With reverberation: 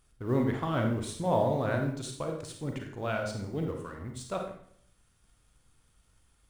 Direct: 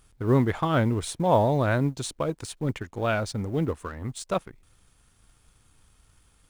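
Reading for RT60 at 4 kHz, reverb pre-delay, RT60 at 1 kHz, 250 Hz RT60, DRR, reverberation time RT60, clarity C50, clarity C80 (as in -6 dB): 0.55 s, 32 ms, 0.60 s, 0.80 s, 2.5 dB, 0.60 s, 5.0 dB, 9.0 dB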